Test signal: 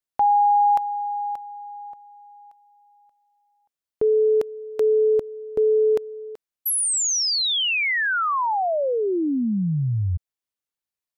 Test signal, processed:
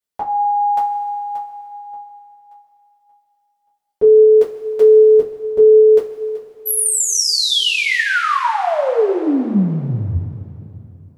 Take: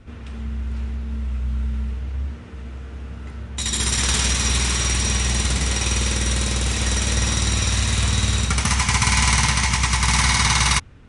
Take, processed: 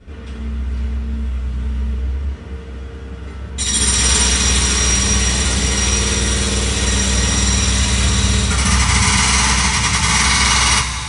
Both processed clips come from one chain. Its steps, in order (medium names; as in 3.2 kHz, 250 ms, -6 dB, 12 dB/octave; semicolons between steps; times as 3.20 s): two-slope reverb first 0.21 s, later 2.9 s, from -18 dB, DRR -8 dB; trim -3.5 dB